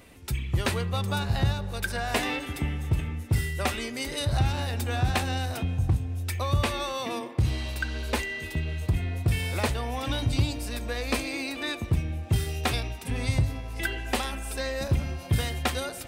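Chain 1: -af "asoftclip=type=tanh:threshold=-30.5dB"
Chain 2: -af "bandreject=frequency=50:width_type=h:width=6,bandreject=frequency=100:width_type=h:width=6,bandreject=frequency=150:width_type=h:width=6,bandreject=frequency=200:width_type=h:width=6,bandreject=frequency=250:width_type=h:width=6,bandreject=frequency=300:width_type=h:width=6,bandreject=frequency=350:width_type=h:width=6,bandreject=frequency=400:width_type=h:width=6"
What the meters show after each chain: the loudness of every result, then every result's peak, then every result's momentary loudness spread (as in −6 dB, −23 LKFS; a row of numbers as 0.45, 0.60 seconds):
−35.0, −29.5 LKFS; −30.5, −13.0 dBFS; 2, 5 LU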